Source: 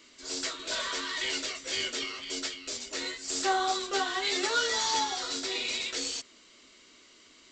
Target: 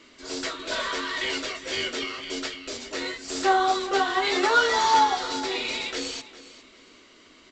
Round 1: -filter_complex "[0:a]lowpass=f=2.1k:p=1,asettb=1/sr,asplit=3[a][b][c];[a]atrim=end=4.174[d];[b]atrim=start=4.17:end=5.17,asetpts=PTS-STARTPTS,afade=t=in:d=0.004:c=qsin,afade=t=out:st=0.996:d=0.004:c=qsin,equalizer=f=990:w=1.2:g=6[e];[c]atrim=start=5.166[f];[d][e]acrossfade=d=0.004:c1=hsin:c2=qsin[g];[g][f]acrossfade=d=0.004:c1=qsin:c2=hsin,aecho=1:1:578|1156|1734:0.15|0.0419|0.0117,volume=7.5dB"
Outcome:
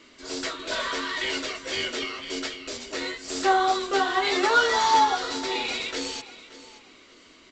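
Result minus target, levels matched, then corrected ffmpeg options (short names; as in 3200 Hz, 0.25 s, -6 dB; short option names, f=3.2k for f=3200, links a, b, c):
echo 0.173 s late
-filter_complex "[0:a]lowpass=f=2.1k:p=1,asettb=1/sr,asplit=3[a][b][c];[a]atrim=end=4.174[d];[b]atrim=start=4.17:end=5.17,asetpts=PTS-STARTPTS,afade=t=in:d=0.004:c=qsin,afade=t=out:st=0.996:d=0.004:c=qsin,equalizer=f=990:w=1.2:g=6[e];[c]atrim=start=5.166[f];[d][e]acrossfade=d=0.004:c1=hsin:c2=qsin[g];[g][f]acrossfade=d=0.004:c1=qsin:c2=hsin,aecho=1:1:405|810|1215:0.15|0.0419|0.0117,volume=7.5dB"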